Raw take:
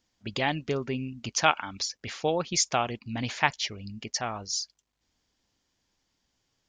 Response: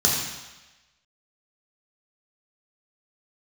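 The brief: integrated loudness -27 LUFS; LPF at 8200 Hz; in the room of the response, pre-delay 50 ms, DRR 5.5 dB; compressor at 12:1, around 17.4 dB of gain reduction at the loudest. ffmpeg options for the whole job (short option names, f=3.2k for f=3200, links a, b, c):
-filter_complex "[0:a]lowpass=8.2k,acompressor=threshold=-34dB:ratio=12,asplit=2[a][b];[1:a]atrim=start_sample=2205,adelay=50[c];[b][c]afir=irnorm=-1:irlink=0,volume=-20.5dB[d];[a][d]amix=inputs=2:normalize=0,volume=10dB"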